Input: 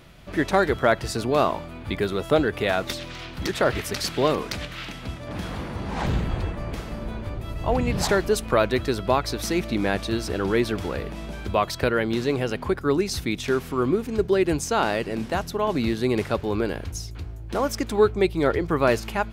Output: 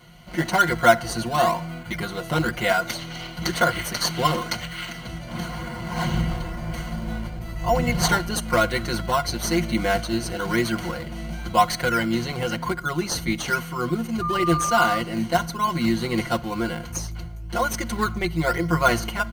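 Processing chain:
EQ curve with evenly spaced ripples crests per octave 1.9, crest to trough 13 dB
shaped tremolo saw up 1.1 Hz, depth 30%
high-pass filter 82 Hz 6 dB per octave
parametric band 380 Hz −10.5 dB 1.3 octaves
comb filter 5.6 ms, depth 97%
in parallel at −7 dB: sample-and-hold swept by an LFO 14×, swing 100% 1 Hz
0:14.21–0:14.97: on the sum: steady tone 1,200 Hz −22 dBFS
on a send at −21 dB: convolution reverb RT60 0.70 s, pre-delay 44 ms
on the sum: level −1 dB

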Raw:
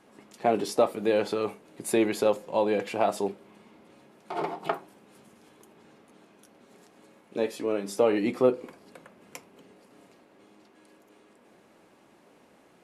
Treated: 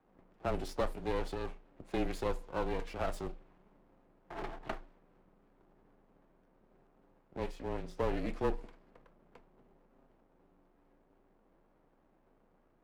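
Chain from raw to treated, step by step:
low-pass that shuts in the quiet parts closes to 1,000 Hz, open at −21.5 dBFS
half-wave rectification
frequency shifter −26 Hz
level −6.5 dB

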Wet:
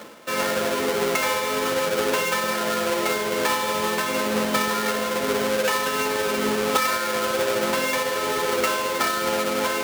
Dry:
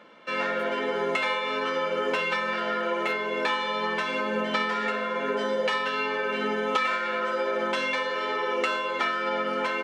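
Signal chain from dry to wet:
each half-wave held at its own peak
high-pass filter 82 Hz 12 dB per octave
reversed playback
upward compression, threshold −27 dBFS
reversed playback

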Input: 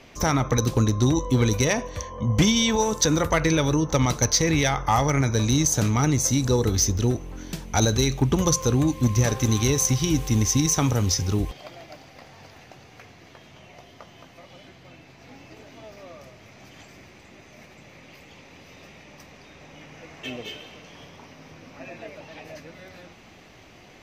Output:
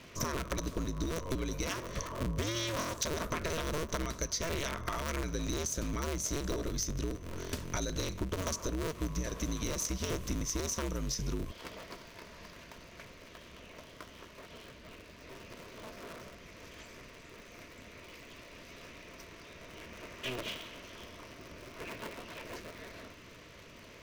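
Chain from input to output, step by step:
sub-harmonics by changed cycles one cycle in 2, inverted
downward compressor 12 to 1, threshold −28 dBFS, peak gain reduction 14 dB
Butterworth band-reject 800 Hz, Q 4.5
level −3 dB

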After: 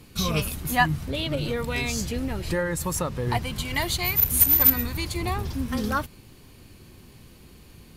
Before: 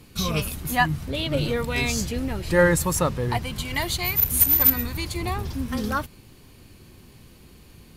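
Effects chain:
0:01.01–0:03.27: downward compressor 6 to 1, threshold −23 dBFS, peak gain reduction 10.5 dB

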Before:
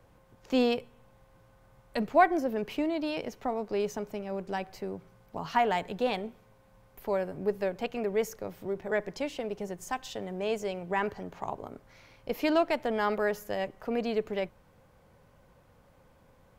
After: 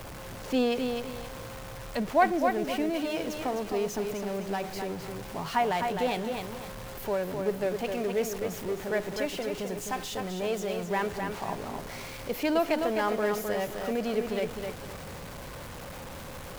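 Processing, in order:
converter with a step at zero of −35 dBFS
feedback echo at a low word length 258 ms, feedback 35%, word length 8 bits, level −5 dB
level −1.5 dB

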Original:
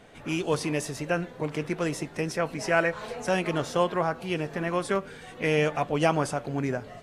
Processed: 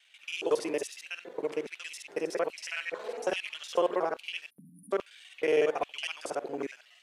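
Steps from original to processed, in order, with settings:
reversed piece by piece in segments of 46 ms
time-frequency box erased 0:04.50–0:04.92, 280–9,400 Hz
auto-filter high-pass square 1.2 Hz 410–2,800 Hz
level −6 dB

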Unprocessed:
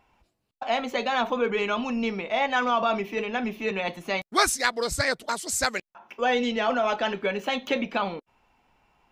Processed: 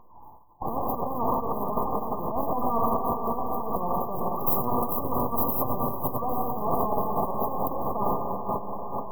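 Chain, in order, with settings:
spectral magnitudes quantised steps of 15 dB
parametric band 1,300 Hz +3.5 dB
in parallel at +0.5 dB: downward compressor, threshold −34 dBFS, peak gain reduction 18 dB
on the sum: auto-filter high-pass sine 4.6 Hz 760–2,100 Hz
half-wave rectification
feedback delay with all-pass diffusion 498 ms, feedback 58%, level −12 dB
on a send at −8 dB: convolution reverb RT60 2.3 s, pre-delay 4 ms
on the sum: transient designer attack −12 dB, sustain +11 dB
linear-phase brick-wall band-stop 1,200–13,000 Hz
every bin compressed towards the loudest bin 2 to 1

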